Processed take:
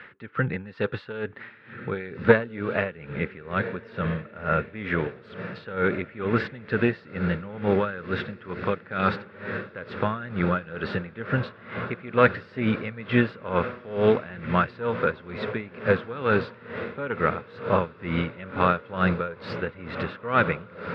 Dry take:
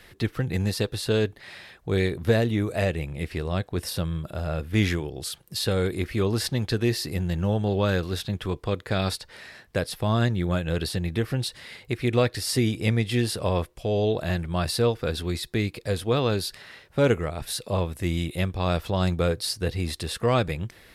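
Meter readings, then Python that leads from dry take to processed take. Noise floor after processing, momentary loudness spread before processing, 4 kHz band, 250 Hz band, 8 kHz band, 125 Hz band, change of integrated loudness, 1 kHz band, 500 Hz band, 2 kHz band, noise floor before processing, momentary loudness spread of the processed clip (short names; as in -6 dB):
-49 dBFS, 8 LU, -10.5 dB, -1.0 dB, under -35 dB, -5.5 dB, -0.5 dB, +5.5 dB, +0.5 dB, +5.5 dB, -54 dBFS, 11 LU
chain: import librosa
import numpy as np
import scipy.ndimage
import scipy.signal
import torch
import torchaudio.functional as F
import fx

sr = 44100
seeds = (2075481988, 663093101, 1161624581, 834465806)

y = fx.cheby_harmonics(x, sr, harmonics=(2,), levels_db=(-11,), full_scale_db=-9.0)
y = fx.cabinet(y, sr, low_hz=180.0, low_slope=12, high_hz=2500.0, hz=(330.0, 700.0, 1400.0), db=(-8, -9, 9))
y = fx.echo_diffused(y, sr, ms=1583, feedback_pct=71, wet_db=-12.5)
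y = y * 10.0 ** (-19 * (0.5 - 0.5 * np.cos(2.0 * np.pi * 2.2 * np.arange(len(y)) / sr)) / 20.0)
y = y * 10.0 ** (8.5 / 20.0)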